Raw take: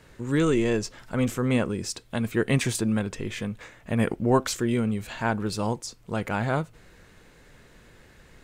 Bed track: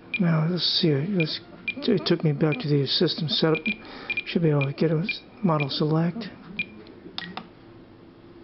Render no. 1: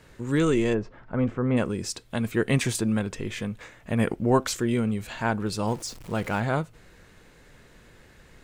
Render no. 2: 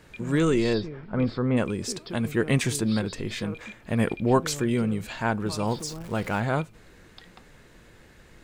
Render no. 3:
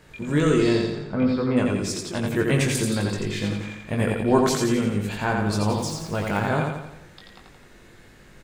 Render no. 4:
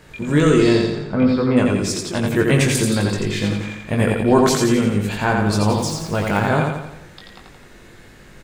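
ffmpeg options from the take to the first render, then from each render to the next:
-filter_complex "[0:a]asplit=3[a][b][c];[a]afade=t=out:st=0.73:d=0.02[d];[b]lowpass=1.5k,afade=t=in:st=0.73:d=0.02,afade=t=out:st=1.56:d=0.02[e];[c]afade=t=in:st=1.56:d=0.02[f];[d][e][f]amix=inputs=3:normalize=0,asettb=1/sr,asplit=3[g][h][i];[g]atrim=end=5.674[j];[h]atrim=start=5.67:end=6.4,asetpts=PTS-STARTPTS,afade=t=in:d=0.004:c=qsin,afade=t=out:st=0.726:d=0.004:c=qsin,aeval=exprs='val(0)+0.5*0.01*sgn(val(0))':c=same[k];[i]atrim=start=6.396[l];[j][k]acrossfade=d=0.004:c1=hsin:c2=qsin[m];[m][l]acrossfade=d=0.004:c1=qsin:c2=hsin"
-filter_complex "[1:a]volume=-16.5dB[a];[0:a][a]amix=inputs=2:normalize=0"
-filter_complex "[0:a]asplit=2[a][b];[b]adelay=20,volume=-5dB[c];[a][c]amix=inputs=2:normalize=0,asplit=2[d][e];[e]aecho=0:1:86|172|258|344|430|516|602:0.668|0.334|0.167|0.0835|0.0418|0.0209|0.0104[f];[d][f]amix=inputs=2:normalize=0"
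-af "volume=5.5dB,alimiter=limit=-3dB:level=0:latency=1"

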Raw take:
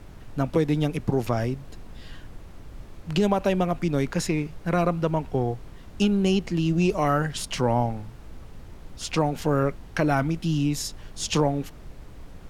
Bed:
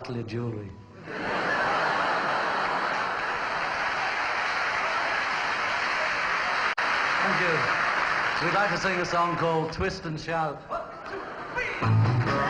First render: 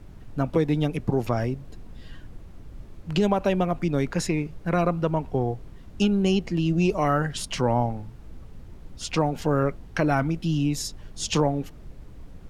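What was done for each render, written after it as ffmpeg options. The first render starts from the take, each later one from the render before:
-af "afftdn=nr=6:nf=-45"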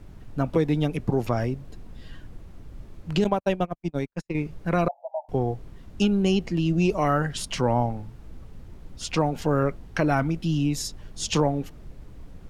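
-filter_complex "[0:a]asettb=1/sr,asplit=3[a][b][c];[a]atrim=end=3.244[d];[b]atrim=start=3.24:end=4.35,asetpts=PTS-STARTPTS,afade=t=in:d=0.004:c=qsin,afade=t=out:st=1.106:d=0.004:c=qsin,agate=range=-57dB:threshold=-23dB:ratio=16:release=100:detection=peak[e];[c]atrim=start=4.346[f];[d][e]acrossfade=d=0.004:c1=hsin:c2=qsin[g];[g][f]acrossfade=d=0.004:c1=qsin:c2=hsin,asettb=1/sr,asplit=3[h][i][j];[h]atrim=end=4.884[k];[i]atrim=start=4.88:end=5.29,asetpts=PTS-STARTPTS,afade=t=in:d=0.004:c=qsin,afade=t=out:st=0.406:d=0.004:c=qsin,asuperpass=centerf=720:order=12:qfactor=2.3[l];[j]atrim=start=5.286[m];[k][l]acrossfade=d=0.004:c1=hsin:c2=qsin[n];[n][m]acrossfade=d=0.004:c1=qsin:c2=hsin"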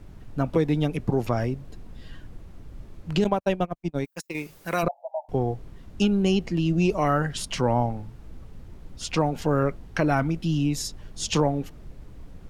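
-filter_complex "[0:a]asplit=3[a][b][c];[a]afade=t=out:st=4.04:d=0.02[d];[b]aemphasis=mode=production:type=riaa,afade=t=in:st=4.04:d=0.02,afade=t=out:st=4.82:d=0.02[e];[c]afade=t=in:st=4.82:d=0.02[f];[d][e][f]amix=inputs=3:normalize=0"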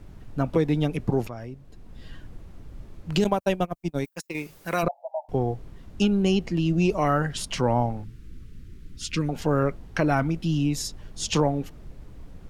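-filter_complex "[0:a]asettb=1/sr,asplit=3[a][b][c];[a]atrim=end=3.134[d];[b]atrim=start=3.13:end=4.09,asetpts=PTS-STARTPTS,afade=t=in:d=0.004:c=qsin,afade=t=out:st=0.956:d=0.004:c=qsin,highshelf=f=6.5k:g=11[e];[c]atrim=start=4.086[f];[d][e]acrossfade=d=0.004:c1=hsin:c2=qsin[g];[g][f]acrossfade=d=0.004:c1=qsin:c2=hsin,asettb=1/sr,asplit=3[h][i][j];[h]atrim=end=8.044[k];[i]atrim=start=8.04:end=9.29,asetpts=PTS-STARTPTS,afade=t=in:d=0.004:c=qsin,afade=t=out:st=1.246:d=0.004:c=qsin,asuperstop=centerf=750:order=4:qfactor=0.66[l];[j]atrim=start=9.286[m];[k][l]acrossfade=d=0.004:c1=hsin:c2=qsin[n];[n][m]acrossfade=d=0.004:c1=qsin:c2=hsin,asplit=2[o][p];[o]atrim=end=1.28,asetpts=PTS-STARTPTS,afade=t=out:st=1.276:d=0.004:c=hsin:silence=0.237137[q];[p]atrim=start=1.28,asetpts=PTS-STARTPTS,afade=t=in:d=0.76:c=qua:silence=0.237137[r];[q][r]concat=n=2:v=0:a=1"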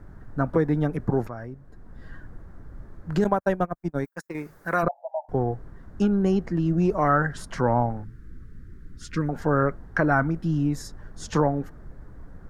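-af "highshelf=f=2.1k:t=q:w=3:g=-8.5"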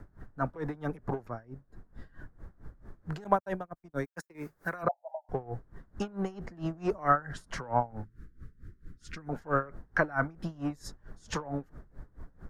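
-filter_complex "[0:a]acrossover=split=440|1100[a][b][c];[a]asoftclip=type=tanh:threshold=-29dB[d];[d][b][c]amix=inputs=3:normalize=0,aeval=exprs='val(0)*pow(10,-22*(0.5-0.5*cos(2*PI*4.5*n/s))/20)':c=same"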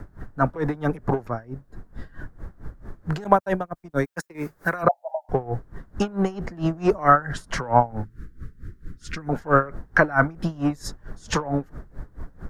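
-af "volume=10.5dB,alimiter=limit=-2dB:level=0:latency=1"

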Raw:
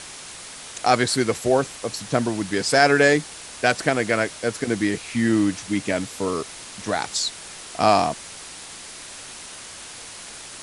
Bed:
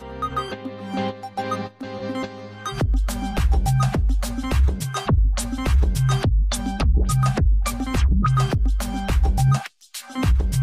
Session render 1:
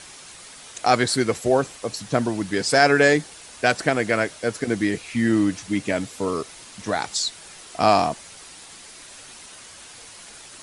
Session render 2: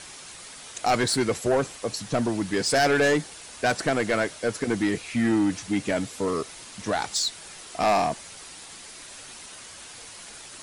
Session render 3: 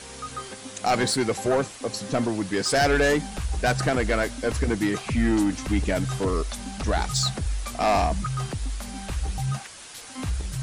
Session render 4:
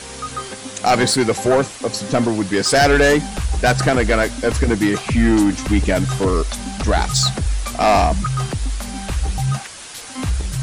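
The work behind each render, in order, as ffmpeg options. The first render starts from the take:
-af "afftdn=nr=6:nf=-39"
-af "asoftclip=type=tanh:threshold=-16dB"
-filter_complex "[1:a]volume=-10dB[a];[0:a][a]amix=inputs=2:normalize=0"
-af "volume=7.5dB"

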